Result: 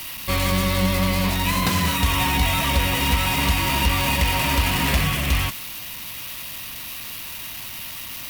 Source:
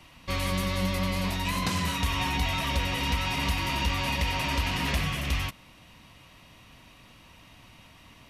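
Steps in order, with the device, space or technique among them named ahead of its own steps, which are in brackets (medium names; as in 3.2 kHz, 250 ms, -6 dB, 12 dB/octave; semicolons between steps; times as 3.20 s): budget class-D amplifier (dead-time distortion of 0.078 ms; zero-crossing glitches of -27.5 dBFS); trim +7.5 dB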